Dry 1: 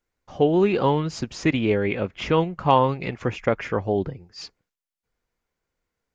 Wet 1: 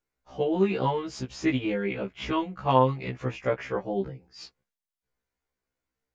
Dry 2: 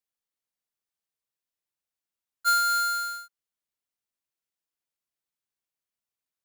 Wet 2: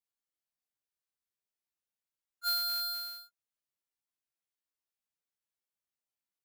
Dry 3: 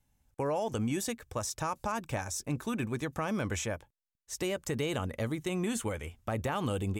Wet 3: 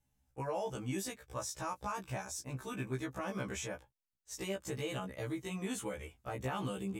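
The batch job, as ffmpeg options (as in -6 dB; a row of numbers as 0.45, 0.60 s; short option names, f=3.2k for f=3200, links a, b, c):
-af "afftfilt=real='re*1.73*eq(mod(b,3),0)':imag='im*1.73*eq(mod(b,3),0)':win_size=2048:overlap=0.75,volume=-3dB"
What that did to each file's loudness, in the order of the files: -5.0, -7.5, -6.0 LU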